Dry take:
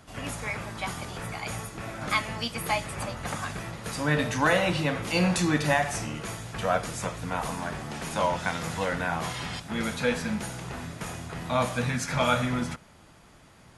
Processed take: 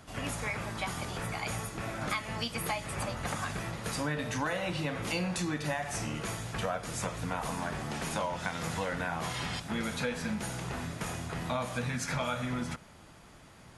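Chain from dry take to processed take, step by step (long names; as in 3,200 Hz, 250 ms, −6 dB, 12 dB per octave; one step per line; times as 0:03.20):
downward compressor 6 to 1, threshold −30 dBFS, peak gain reduction 11 dB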